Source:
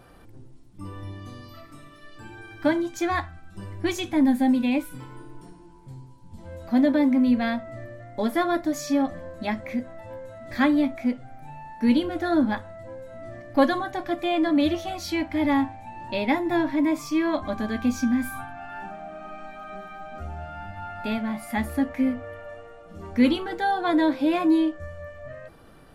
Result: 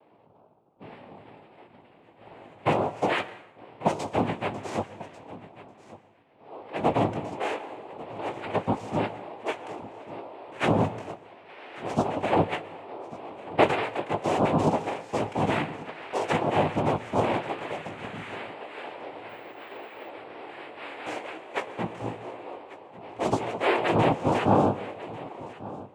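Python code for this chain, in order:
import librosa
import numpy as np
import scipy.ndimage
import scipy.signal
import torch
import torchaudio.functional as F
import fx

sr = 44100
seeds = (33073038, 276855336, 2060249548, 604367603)

y = scipy.signal.sosfilt(scipy.signal.butter(16, 290.0, 'highpass', fs=sr, output='sos'), x)
y = fx.env_lowpass(y, sr, base_hz=560.0, full_db=-24.0)
y = scipy.signal.sosfilt(scipy.signal.bessel(2, 1800.0, 'lowpass', norm='mag', fs=sr, output='sos'), y)
y = fx.peak_eq(y, sr, hz=620.0, db=2.5, octaves=2.7)
y = fx.over_compress(y, sr, threshold_db=-30.0, ratio=-1.0, at=(7.99, 8.53), fade=0.02)
y = fx.noise_vocoder(y, sr, seeds[0], bands=4)
y = fx.chorus_voices(y, sr, voices=4, hz=0.5, base_ms=19, depth_ms=1.7, mix_pct=25)
y = y + 10.0 ** (-18.0 / 20.0) * np.pad(y, (int(1143 * sr / 1000.0), 0))[:len(y)]
y = fx.rev_plate(y, sr, seeds[1], rt60_s=0.89, hf_ratio=0.75, predelay_ms=105, drr_db=17.0)
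y = fx.resample_bad(y, sr, factor=2, down='none', up='hold', at=(19.29, 20.09))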